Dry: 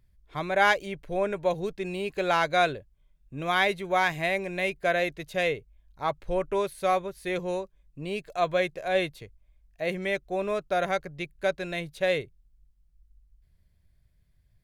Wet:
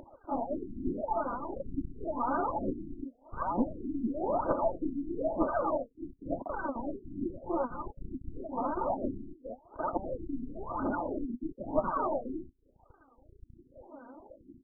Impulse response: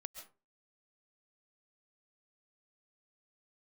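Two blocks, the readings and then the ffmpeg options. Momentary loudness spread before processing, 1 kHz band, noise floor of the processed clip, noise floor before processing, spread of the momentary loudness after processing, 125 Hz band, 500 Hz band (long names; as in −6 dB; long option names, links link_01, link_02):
11 LU, −5.0 dB, −66 dBFS, −66 dBFS, 13 LU, −6.5 dB, −7.0 dB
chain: -af "afftfilt=real='real(if(lt(b,272),68*(eq(floor(b/68),0)*1+eq(floor(b/68),1)*3+eq(floor(b/68),2)*0+eq(floor(b/68),3)*2)+mod(b,68),b),0)':imag='imag(if(lt(b,272),68*(eq(floor(b/68),0)*1+eq(floor(b/68),1)*3+eq(floor(b/68),2)*0+eq(floor(b/68),3)*2)+mod(b,68),b),0)':win_size=2048:overlap=0.75,aresample=8000,aeval=exprs='0.266*sin(PI/2*3.98*val(0)/0.266)':channel_layout=same,aresample=44100,highpass=220,equalizer=frequency=270:width_type=q:width=4:gain=8,equalizer=frequency=500:width_type=q:width=4:gain=5,equalizer=frequency=780:width_type=q:width=4:gain=6,lowpass=frequency=2400:width=0.5412,lowpass=frequency=2400:width=1.3066,acompressor=threshold=-28dB:ratio=3,aecho=1:1:239.1|274.1:0.794|1,acompressor=mode=upward:threshold=-30dB:ratio=2.5,alimiter=limit=-23dB:level=0:latency=1:release=17,aecho=1:1:3.3:0.63,aphaser=in_gain=1:out_gain=1:delay=4.4:decay=0.75:speed=1.1:type=triangular,aeval=exprs='clip(val(0),-1,0.0398)':channel_layout=same,afftfilt=real='re*lt(b*sr/1024,350*pow(1600/350,0.5+0.5*sin(2*PI*0.94*pts/sr)))':imag='im*lt(b*sr/1024,350*pow(1600/350,0.5+0.5*sin(2*PI*0.94*pts/sr)))':win_size=1024:overlap=0.75"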